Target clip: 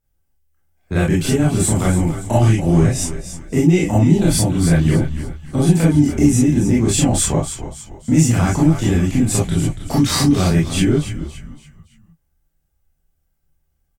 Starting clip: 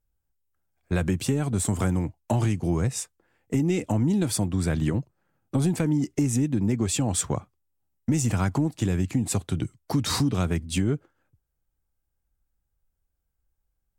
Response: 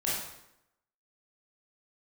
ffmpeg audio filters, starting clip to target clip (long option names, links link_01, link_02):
-filter_complex "[0:a]asplit=5[link_01][link_02][link_03][link_04][link_05];[link_02]adelay=284,afreqshift=-79,volume=-10.5dB[link_06];[link_03]adelay=568,afreqshift=-158,volume=-18.7dB[link_07];[link_04]adelay=852,afreqshift=-237,volume=-26.9dB[link_08];[link_05]adelay=1136,afreqshift=-316,volume=-35dB[link_09];[link_01][link_06][link_07][link_08][link_09]amix=inputs=5:normalize=0[link_10];[1:a]atrim=start_sample=2205,atrim=end_sample=3087[link_11];[link_10][link_11]afir=irnorm=-1:irlink=0,volume=4dB"